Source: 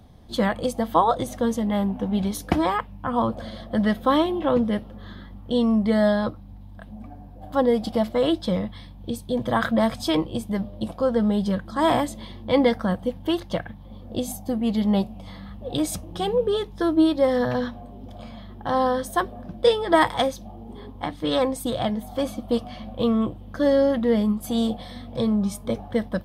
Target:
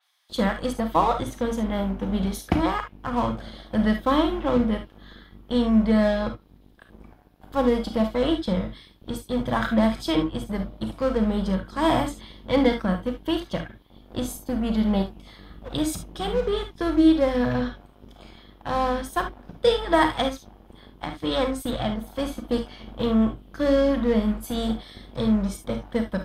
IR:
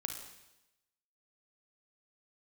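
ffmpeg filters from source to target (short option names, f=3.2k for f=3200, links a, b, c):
-filter_complex "[0:a]lowshelf=f=110:g=8,acrossover=split=1300[a][b];[a]aeval=exprs='sgn(val(0))*max(abs(val(0))-0.0237,0)':c=same[c];[c][b]amix=inputs=2:normalize=0[d];[1:a]atrim=start_sample=2205,atrim=end_sample=3528[e];[d][e]afir=irnorm=-1:irlink=0,adynamicequalizer=threshold=0.00501:dfrequency=4600:dqfactor=0.7:tfrequency=4600:tqfactor=0.7:attack=5:release=100:ratio=0.375:range=2.5:mode=cutabove:tftype=highshelf"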